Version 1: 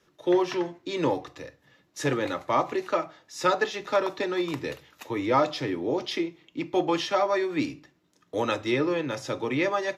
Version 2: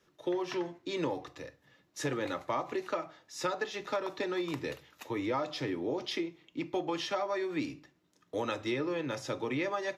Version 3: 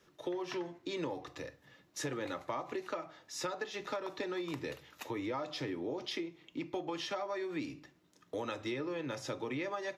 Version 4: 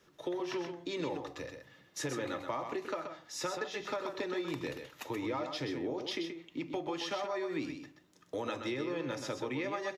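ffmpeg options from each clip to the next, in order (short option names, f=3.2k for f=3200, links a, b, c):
-af "acompressor=threshold=-25dB:ratio=6,volume=-4dB"
-af "acompressor=threshold=-44dB:ratio=2,volume=3dB"
-af "aecho=1:1:128:0.447,volume=1dB"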